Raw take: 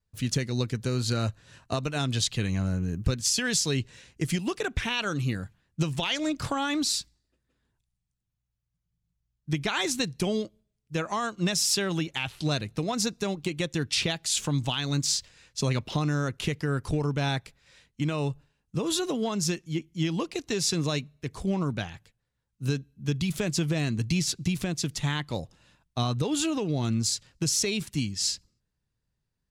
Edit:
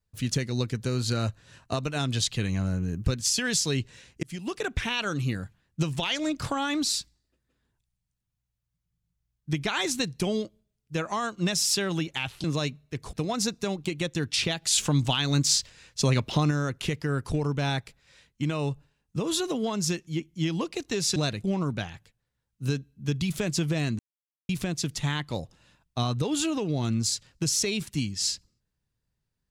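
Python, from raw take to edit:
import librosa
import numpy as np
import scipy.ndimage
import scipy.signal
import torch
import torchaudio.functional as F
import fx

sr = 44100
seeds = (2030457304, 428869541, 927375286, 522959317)

y = fx.edit(x, sr, fx.fade_in_span(start_s=4.23, length_s=0.51, curve='qsin'),
    fx.swap(start_s=12.44, length_s=0.28, other_s=20.75, other_length_s=0.69),
    fx.clip_gain(start_s=14.21, length_s=1.89, db=3.5),
    fx.silence(start_s=23.99, length_s=0.5), tone=tone)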